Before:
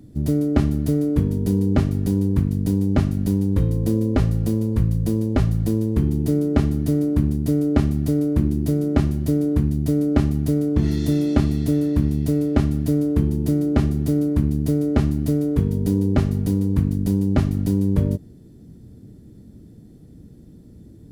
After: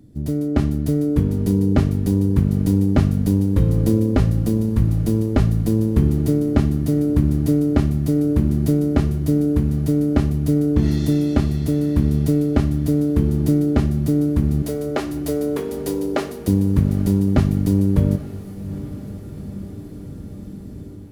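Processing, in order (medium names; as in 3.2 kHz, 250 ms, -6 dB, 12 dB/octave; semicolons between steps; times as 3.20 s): 14.62–16.48 s: high-pass 370 Hz 24 dB/octave; level rider gain up to 11 dB; on a send: echo that smears into a reverb 812 ms, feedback 67%, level -16 dB; on the sum: trim -3 dB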